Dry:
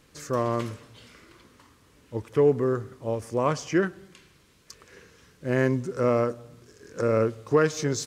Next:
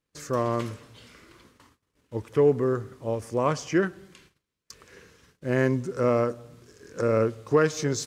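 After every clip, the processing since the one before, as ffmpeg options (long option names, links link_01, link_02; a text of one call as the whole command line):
ffmpeg -i in.wav -af "agate=range=-25dB:threshold=-55dB:ratio=16:detection=peak" out.wav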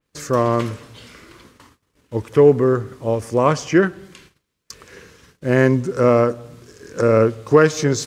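ffmpeg -i in.wav -af "adynamicequalizer=threshold=0.00562:dfrequency=4000:dqfactor=0.7:tfrequency=4000:tqfactor=0.7:attack=5:release=100:ratio=0.375:range=2.5:mode=cutabove:tftype=highshelf,volume=8.5dB" out.wav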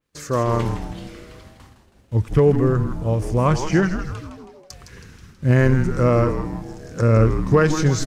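ffmpeg -i in.wav -filter_complex "[0:a]asubboost=boost=9:cutoff=160,asplit=7[link_01][link_02][link_03][link_04][link_05][link_06][link_07];[link_02]adelay=161,afreqshift=-150,volume=-8dB[link_08];[link_03]adelay=322,afreqshift=-300,volume=-13.7dB[link_09];[link_04]adelay=483,afreqshift=-450,volume=-19.4dB[link_10];[link_05]adelay=644,afreqshift=-600,volume=-25dB[link_11];[link_06]adelay=805,afreqshift=-750,volume=-30.7dB[link_12];[link_07]adelay=966,afreqshift=-900,volume=-36.4dB[link_13];[link_01][link_08][link_09][link_10][link_11][link_12][link_13]amix=inputs=7:normalize=0,volume=-3dB" out.wav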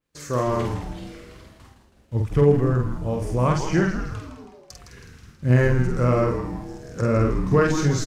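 ffmpeg -i in.wav -filter_complex "[0:a]asplit=2[link_01][link_02];[link_02]adelay=48,volume=-3.5dB[link_03];[link_01][link_03]amix=inputs=2:normalize=0,volume=-4dB" out.wav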